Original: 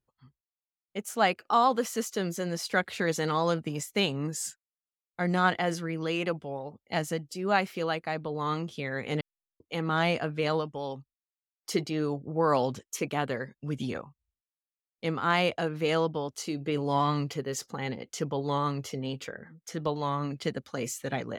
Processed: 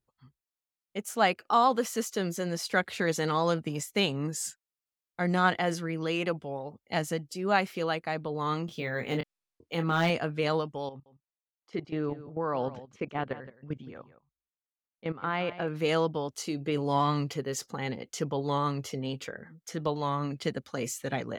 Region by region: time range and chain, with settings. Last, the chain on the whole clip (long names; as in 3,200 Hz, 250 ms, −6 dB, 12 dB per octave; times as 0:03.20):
0:08.66–0:10.10: double-tracking delay 24 ms −7 dB + gain into a clipping stage and back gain 18.5 dB + linearly interpolated sample-rate reduction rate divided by 2×
0:10.89–0:15.68: low-pass filter 2,600 Hz + output level in coarse steps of 15 dB + single-tap delay 168 ms −15 dB
whole clip: no processing